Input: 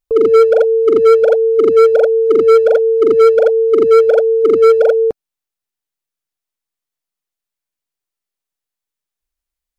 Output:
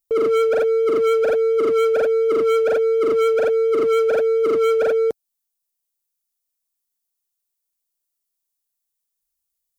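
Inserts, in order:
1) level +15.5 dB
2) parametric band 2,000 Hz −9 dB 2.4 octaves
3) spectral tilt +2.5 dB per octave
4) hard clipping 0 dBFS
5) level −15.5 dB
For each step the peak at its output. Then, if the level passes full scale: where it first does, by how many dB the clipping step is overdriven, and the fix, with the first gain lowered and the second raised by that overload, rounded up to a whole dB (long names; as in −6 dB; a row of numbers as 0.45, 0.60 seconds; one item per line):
+11.5, +11.0, +8.5, 0.0, −15.5 dBFS
step 1, 8.5 dB
step 1 +6.5 dB, step 5 −6.5 dB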